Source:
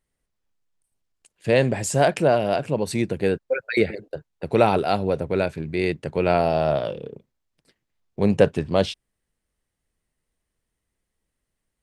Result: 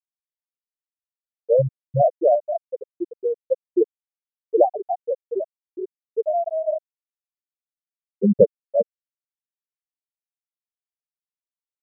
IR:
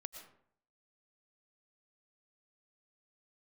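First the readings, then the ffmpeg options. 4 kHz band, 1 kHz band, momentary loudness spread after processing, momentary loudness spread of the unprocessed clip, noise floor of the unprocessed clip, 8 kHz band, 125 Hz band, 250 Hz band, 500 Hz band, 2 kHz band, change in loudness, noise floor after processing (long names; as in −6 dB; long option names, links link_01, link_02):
below −40 dB, −2.5 dB, 13 LU, 14 LU, −81 dBFS, below −40 dB, −5.5 dB, −3.0 dB, +0.5 dB, below −40 dB, −0.5 dB, below −85 dBFS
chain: -af "afftfilt=real='re*gte(hypot(re,im),0.794)':imag='im*gte(hypot(re,im),0.794)':win_size=1024:overlap=0.75,volume=3.5dB"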